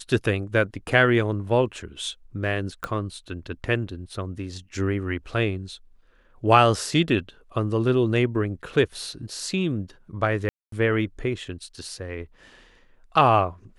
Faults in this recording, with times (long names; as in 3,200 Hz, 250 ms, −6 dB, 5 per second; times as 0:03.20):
0:02.84: click −15 dBFS
0:10.49–0:10.72: drop-out 233 ms